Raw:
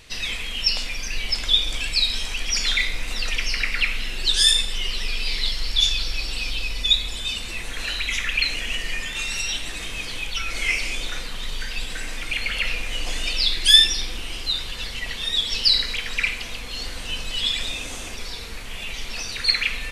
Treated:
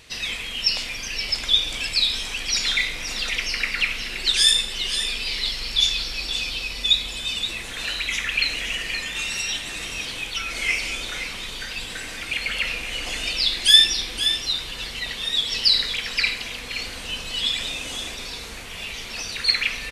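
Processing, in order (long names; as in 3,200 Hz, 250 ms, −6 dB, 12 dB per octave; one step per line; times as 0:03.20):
high-pass filter 74 Hz 6 dB per octave
single-tap delay 523 ms −9.5 dB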